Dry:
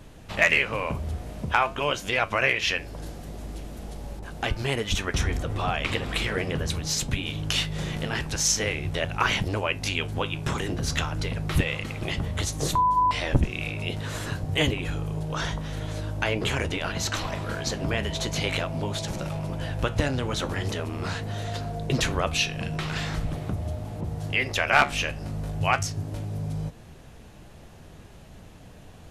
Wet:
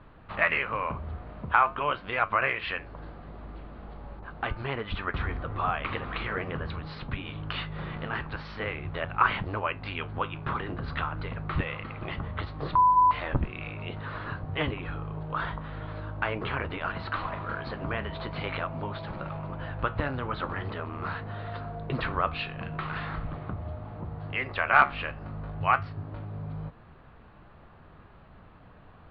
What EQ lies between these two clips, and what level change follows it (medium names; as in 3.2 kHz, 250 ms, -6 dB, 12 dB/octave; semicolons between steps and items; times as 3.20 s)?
elliptic low-pass 4.5 kHz, stop band 40 dB; distance through air 300 m; peaking EQ 1.2 kHz +11.5 dB 0.92 oct; -5.0 dB